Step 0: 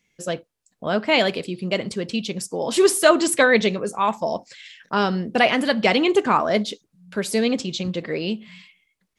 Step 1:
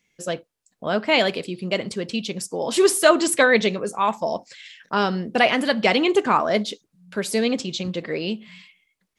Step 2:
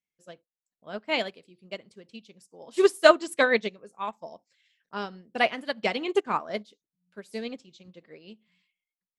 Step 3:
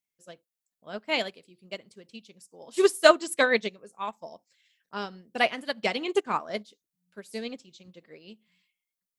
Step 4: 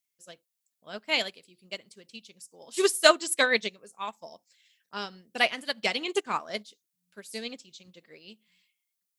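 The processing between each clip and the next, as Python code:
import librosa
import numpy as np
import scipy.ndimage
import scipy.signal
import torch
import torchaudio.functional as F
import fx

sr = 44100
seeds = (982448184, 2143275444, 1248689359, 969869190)

y1 = fx.low_shelf(x, sr, hz=190.0, db=-3.5)
y2 = fx.upward_expand(y1, sr, threshold_db=-28.0, expansion=2.5)
y3 = fx.high_shelf(y2, sr, hz=5700.0, db=8.5)
y3 = y3 * librosa.db_to_amplitude(-1.0)
y4 = fx.high_shelf(y3, sr, hz=2000.0, db=10.0)
y4 = y4 * librosa.db_to_amplitude(-4.0)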